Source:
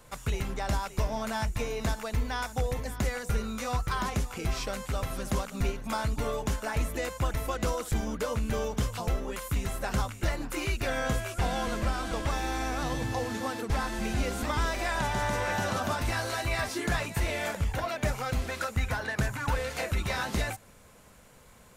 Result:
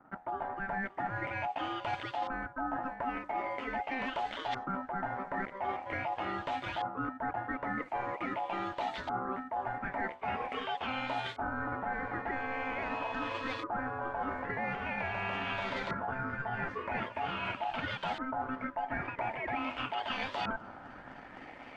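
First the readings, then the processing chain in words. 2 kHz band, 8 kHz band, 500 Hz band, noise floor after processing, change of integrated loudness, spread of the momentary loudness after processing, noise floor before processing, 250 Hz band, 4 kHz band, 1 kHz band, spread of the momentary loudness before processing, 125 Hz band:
−2.5 dB, below −25 dB, −6.0 dB, −50 dBFS, −4.5 dB, 2 LU, −54 dBFS, −5.5 dB, −6.0 dB, +0.5 dB, 3 LU, −15.0 dB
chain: on a send: delay with a high-pass on its return 257 ms, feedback 85%, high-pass 3,500 Hz, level −12 dB
on the sum: dead-zone distortion −56.5 dBFS
auto-filter low-pass saw up 0.44 Hz 570–3,000 Hz
automatic gain control gain up to 8 dB
ring modulation 780 Hz
parametric band 260 Hz +3.5 dB 0.24 octaves
reversed playback
downward compressor 6 to 1, threshold −38 dBFS, peak gain reduction 20 dB
reversed playback
low-shelf EQ 140 Hz −4.5 dB
level +4.5 dB

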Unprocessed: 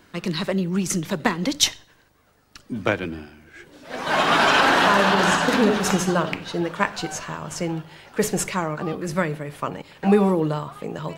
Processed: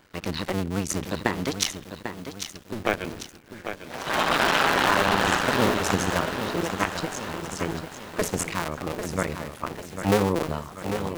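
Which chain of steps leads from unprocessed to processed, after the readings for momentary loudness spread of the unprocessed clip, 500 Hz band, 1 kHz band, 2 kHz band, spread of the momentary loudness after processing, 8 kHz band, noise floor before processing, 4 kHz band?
15 LU, −3.5 dB, −3.5 dB, −3.5 dB, 15 LU, −3.5 dB, −57 dBFS, −4.0 dB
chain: sub-harmonics by changed cycles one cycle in 2, muted
feedback echo at a low word length 796 ms, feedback 55%, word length 7 bits, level −8.5 dB
level −1.5 dB

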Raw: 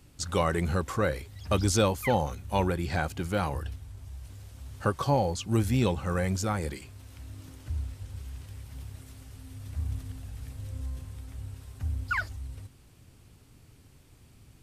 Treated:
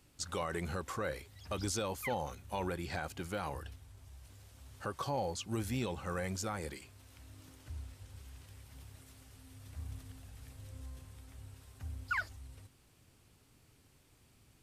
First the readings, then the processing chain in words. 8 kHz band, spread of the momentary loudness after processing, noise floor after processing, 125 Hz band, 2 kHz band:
−6.5 dB, 19 LU, −66 dBFS, −12.5 dB, −6.5 dB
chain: low-shelf EQ 260 Hz −7.5 dB
brickwall limiter −20.5 dBFS, peak gain reduction 7.5 dB
level −5 dB

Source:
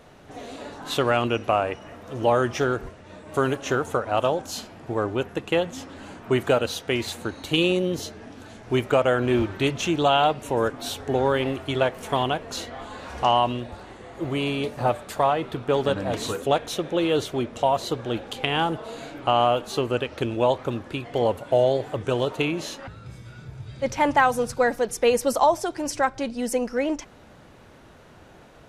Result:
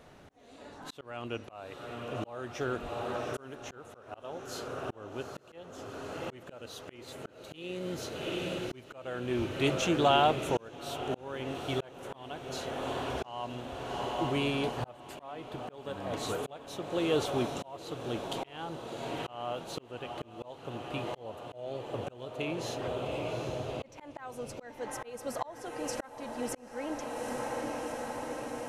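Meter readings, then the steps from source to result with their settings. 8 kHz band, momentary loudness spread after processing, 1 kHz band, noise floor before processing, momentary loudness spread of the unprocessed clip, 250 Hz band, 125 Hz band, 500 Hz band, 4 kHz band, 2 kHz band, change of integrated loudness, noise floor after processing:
−9.0 dB, 15 LU, −11.5 dB, −49 dBFS, 16 LU, −9.5 dB, −10.0 dB, −11.5 dB, −9.5 dB, −11.5 dB, −11.5 dB, −54 dBFS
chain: feedback delay with all-pass diffusion 801 ms, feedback 76%, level −10 dB
volume swells 773 ms
level −5 dB

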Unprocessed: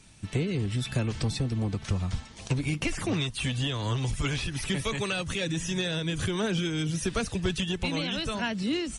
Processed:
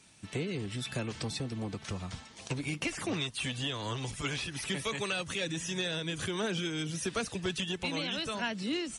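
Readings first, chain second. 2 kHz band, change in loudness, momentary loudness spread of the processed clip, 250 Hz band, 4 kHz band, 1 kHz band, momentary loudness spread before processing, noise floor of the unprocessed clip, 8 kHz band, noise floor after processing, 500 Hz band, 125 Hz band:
−2.5 dB, −5.0 dB, 5 LU, −6.0 dB, −2.5 dB, −3.0 dB, 2 LU, −46 dBFS, −2.5 dB, −52 dBFS, −4.0 dB, −9.5 dB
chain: high-pass filter 260 Hz 6 dB per octave
level −2.5 dB

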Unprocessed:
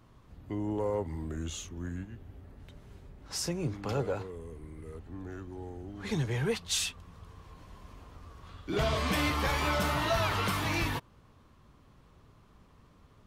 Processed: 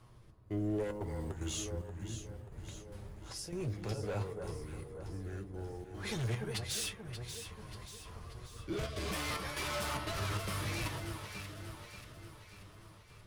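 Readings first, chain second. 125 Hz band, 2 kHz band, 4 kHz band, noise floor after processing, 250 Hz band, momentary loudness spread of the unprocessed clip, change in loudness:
−3.5 dB, −7.0 dB, −5.5 dB, −57 dBFS, −5.5 dB, 23 LU, −7.5 dB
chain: gate pattern "xxx..xxxx.xxx.x" 149 BPM −12 dB
thirty-one-band graphic EQ 250 Hz −11 dB, 5,000 Hz +4 dB, 10,000 Hz +11 dB
hard clipping −32.5 dBFS, distortion −8 dB
floating-point word with a short mantissa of 4 bits
rotating-speaker cabinet horn 0.6 Hz
delay that swaps between a low-pass and a high-pass 292 ms, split 1,500 Hz, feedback 73%, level −7.5 dB
reversed playback
downward compressor, threshold −36 dBFS, peak gain reduction 4 dB
reversed playback
flanger 0.83 Hz, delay 8.1 ms, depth 1.8 ms, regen +50%
level +7 dB

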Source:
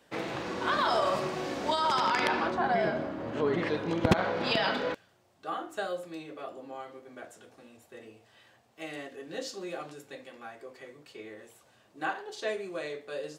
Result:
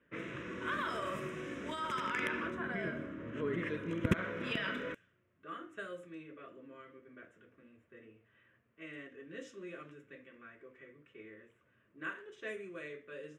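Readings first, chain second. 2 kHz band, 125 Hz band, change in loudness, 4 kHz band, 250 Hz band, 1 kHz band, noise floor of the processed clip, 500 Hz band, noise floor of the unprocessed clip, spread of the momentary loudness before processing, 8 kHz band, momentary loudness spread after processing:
−5.0 dB, −5.0 dB, −8.5 dB, −12.0 dB, −6.0 dB, −12.5 dB, −73 dBFS, −10.5 dB, −64 dBFS, 20 LU, −11.5 dB, 21 LU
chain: low-pass that shuts in the quiet parts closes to 2,100 Hz, open at −27 dBFS
phaser with its sweep stopped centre 1,900 Hz, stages 4
level −4.5 dB

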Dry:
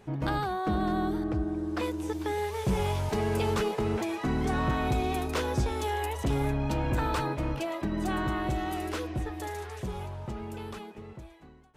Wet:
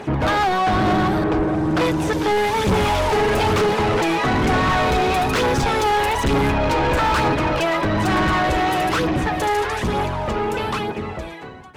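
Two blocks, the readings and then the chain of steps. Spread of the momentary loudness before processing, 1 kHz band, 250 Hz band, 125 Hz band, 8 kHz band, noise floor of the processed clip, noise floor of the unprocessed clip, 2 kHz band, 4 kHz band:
10 LU, +14.0 dB, +9.5 dB, +8.0 dB, +11.0 dB, −32 dBFS, −50 dBFS, +15.5 dB, +14.5 dB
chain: sub-octave generator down 1 octave, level +2 dB
phase shifter 1.1 Hz, delay 2.6 ms, feedback 41%
mid-hump overdrive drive 30 dB, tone 2,900 Hz, clips at −10.5 dBFS

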